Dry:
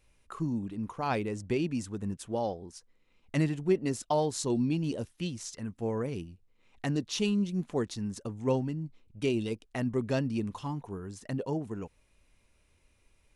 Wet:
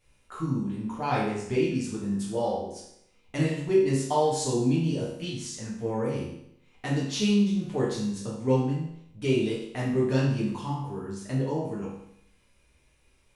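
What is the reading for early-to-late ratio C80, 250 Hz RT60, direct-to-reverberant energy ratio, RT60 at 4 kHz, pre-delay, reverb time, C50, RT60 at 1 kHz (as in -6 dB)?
5.5 dB, 0.70 s, -7.5 dB, 0.70 s, 6 ms, 0.75 s, 2.0 dB, 0.75 s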